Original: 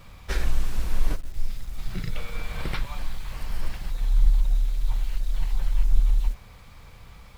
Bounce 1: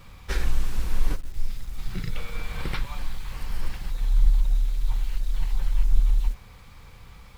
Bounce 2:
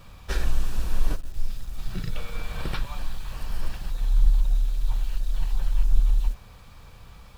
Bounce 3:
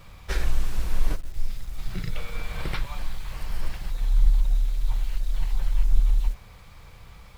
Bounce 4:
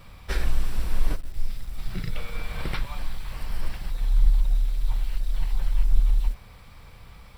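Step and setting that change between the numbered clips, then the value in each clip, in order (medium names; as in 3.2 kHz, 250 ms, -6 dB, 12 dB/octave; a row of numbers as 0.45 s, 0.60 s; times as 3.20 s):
band-stop, frequency: 640 Hz, 2.1 kHz, 240 Hz, 6.6 kHz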